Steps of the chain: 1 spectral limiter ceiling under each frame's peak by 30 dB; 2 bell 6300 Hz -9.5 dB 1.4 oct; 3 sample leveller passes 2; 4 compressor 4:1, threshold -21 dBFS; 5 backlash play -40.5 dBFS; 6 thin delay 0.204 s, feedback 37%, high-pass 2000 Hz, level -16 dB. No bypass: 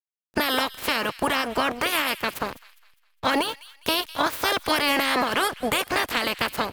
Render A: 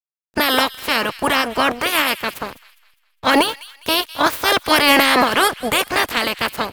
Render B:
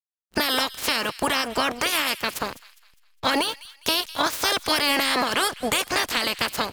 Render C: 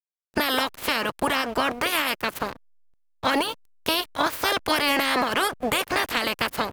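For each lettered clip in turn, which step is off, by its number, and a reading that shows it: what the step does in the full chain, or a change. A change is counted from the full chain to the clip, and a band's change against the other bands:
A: 4, mean gain reduction 5.5 dB; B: 2, 8 kHz band +5.5 dB; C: 6, echo-to-direct -20.0 dB to none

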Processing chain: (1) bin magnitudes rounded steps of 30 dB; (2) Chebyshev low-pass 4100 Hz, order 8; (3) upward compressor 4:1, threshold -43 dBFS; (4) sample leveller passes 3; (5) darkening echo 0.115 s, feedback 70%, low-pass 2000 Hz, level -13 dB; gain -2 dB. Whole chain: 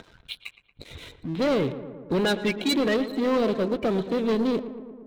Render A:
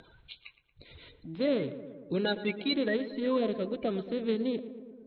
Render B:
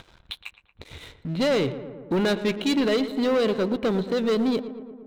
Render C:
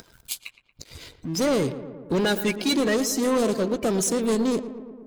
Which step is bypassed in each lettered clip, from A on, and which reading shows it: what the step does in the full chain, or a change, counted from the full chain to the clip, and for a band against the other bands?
4, crest factor change +5.0 dB; 1, 1 kHz band -1.5 dB; 2, 8 kHz band +14.5 dB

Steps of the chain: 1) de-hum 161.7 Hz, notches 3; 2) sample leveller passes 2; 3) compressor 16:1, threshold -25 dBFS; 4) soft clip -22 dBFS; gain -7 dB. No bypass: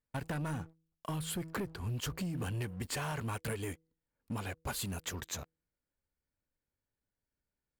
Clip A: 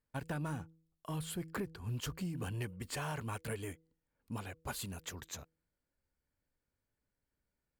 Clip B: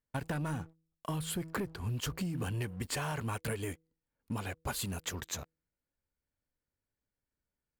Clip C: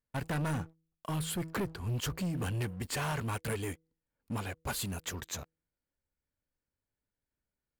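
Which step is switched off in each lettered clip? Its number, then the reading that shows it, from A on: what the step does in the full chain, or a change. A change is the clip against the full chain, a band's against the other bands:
2, loudness change -3.0 LU; 4, distortion -21 dB; 3, mean gain reduction 3.5 dB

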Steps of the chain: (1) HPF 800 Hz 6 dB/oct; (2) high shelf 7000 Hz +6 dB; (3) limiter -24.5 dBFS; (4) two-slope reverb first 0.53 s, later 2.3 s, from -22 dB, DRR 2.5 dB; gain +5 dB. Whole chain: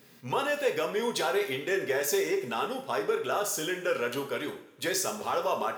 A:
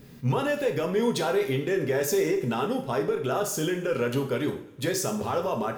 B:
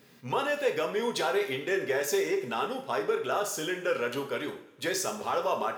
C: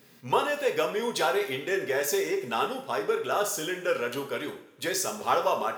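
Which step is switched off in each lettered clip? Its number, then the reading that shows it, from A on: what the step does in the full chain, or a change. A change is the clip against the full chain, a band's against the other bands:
1, 125 Hz band +15.0 dB; 2, 8 kHz band -2.5 dB; 3, crest factor change +3.0 dB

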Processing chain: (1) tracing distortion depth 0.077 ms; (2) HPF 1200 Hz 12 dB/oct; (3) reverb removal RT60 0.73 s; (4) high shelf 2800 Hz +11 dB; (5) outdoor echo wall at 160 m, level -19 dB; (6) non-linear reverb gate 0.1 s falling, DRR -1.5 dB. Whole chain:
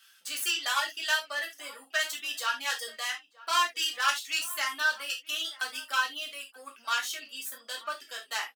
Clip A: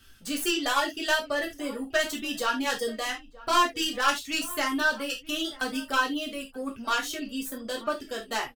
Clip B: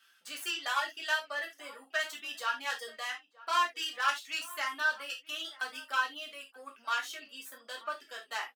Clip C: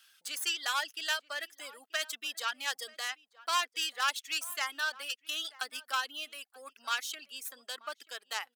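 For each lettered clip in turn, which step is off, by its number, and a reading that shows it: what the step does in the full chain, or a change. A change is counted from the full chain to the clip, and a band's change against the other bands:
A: 2, 250 Hz band +23.5 dB; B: 4, 8 kHz band -8.0 dB; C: 6, loudness change -4.5 LU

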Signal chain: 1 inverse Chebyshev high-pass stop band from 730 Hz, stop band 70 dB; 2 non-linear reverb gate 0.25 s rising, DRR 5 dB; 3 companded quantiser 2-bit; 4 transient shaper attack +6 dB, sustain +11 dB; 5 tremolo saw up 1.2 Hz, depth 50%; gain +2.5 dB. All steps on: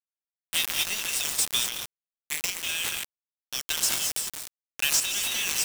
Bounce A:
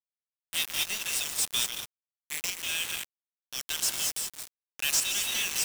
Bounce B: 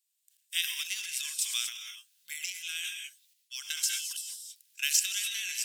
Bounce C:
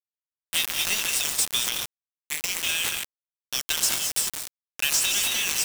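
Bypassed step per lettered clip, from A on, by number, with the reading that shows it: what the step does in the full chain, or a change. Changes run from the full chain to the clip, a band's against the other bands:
4, crest factor change -8.5 dB; 3, distortion -3 dB; 5, crest factor change -2.5 dB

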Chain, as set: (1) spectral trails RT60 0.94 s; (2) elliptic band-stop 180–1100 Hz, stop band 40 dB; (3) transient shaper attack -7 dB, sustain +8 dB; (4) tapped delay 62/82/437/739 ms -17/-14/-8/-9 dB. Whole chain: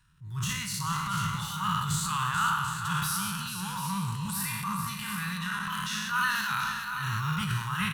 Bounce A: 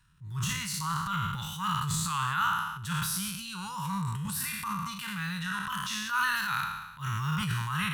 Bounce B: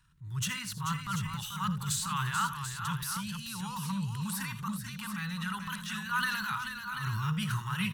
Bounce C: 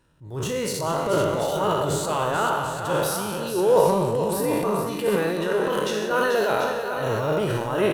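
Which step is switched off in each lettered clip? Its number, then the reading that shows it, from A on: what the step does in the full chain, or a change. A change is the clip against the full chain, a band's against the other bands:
4, echo-to-direct -4.5 dB to none; 1, 250 Hz band +2.5 dB; 2, 500 Hz band +38.0 dB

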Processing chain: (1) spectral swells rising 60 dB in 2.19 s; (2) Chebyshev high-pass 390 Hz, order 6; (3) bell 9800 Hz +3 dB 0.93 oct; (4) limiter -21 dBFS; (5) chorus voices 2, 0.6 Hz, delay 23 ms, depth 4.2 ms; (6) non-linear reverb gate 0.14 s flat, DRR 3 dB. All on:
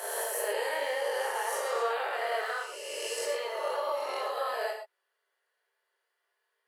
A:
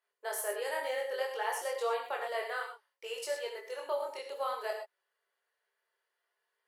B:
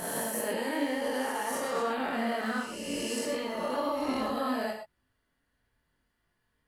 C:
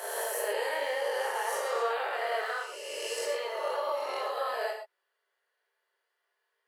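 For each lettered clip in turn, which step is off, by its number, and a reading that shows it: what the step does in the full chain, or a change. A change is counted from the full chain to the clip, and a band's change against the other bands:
1, loudness change -4.0 LU; 2, momentary loudness spread change -3 LU; 3, 8 kHz band -2.0 dB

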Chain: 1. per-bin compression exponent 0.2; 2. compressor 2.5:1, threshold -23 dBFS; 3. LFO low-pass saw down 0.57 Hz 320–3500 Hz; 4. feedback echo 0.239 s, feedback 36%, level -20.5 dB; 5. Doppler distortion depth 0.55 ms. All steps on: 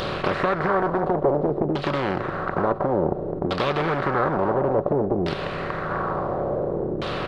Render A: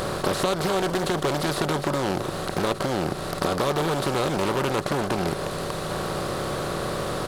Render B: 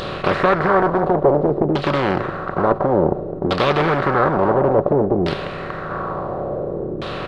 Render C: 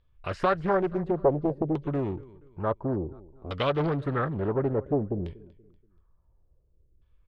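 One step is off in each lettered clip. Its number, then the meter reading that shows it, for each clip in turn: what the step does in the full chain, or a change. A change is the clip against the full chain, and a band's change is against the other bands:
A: 3, 4 kHz band +7.5 dB; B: 2, mean gain reduction 3.5 dB; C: 1, 125 Hz band +6.0 dB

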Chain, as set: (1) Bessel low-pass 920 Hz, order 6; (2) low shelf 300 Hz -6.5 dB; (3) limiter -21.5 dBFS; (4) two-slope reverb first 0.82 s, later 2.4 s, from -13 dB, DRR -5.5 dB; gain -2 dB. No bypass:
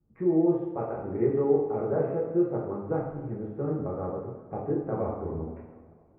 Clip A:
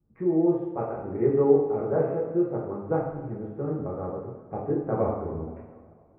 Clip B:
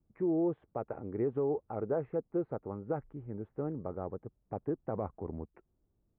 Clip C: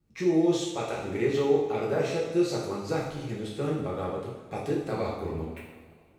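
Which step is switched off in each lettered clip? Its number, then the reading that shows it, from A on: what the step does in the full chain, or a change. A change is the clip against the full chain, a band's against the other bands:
3, crest factor change +2.5 dB; 4, crest factor change -4.0 dB; 1, 2 kHz band +12.0 dB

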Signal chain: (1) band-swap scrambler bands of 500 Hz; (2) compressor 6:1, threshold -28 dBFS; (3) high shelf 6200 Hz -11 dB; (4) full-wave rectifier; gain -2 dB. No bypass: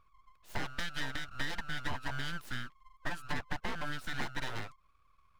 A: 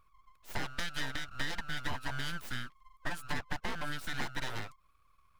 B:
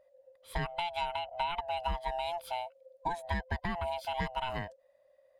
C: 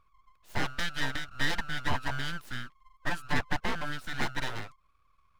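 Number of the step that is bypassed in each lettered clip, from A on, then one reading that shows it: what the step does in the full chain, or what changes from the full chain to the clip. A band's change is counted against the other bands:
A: 3, 8 kHz band +3.0 dB; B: 4, 500 Hz band +10.0 dB; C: 2, mean gain reduction 3.5 dB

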